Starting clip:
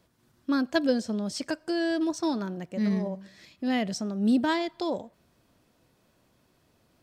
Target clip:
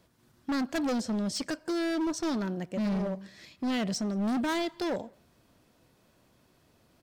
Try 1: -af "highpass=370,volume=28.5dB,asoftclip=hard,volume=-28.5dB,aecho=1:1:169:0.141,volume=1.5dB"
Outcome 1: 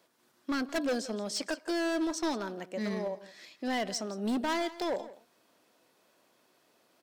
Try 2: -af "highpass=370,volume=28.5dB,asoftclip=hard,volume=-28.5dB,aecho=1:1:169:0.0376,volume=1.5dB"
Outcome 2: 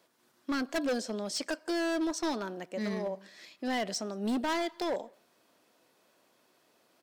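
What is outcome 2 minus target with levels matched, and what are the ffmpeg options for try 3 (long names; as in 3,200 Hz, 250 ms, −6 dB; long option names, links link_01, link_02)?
500 Hz band +3.0 dB
-af "volume=28.5dB,asoftclip=hard,volume=-28.5dB,aecho=1:1:169:0.0376,volume=1.5dB"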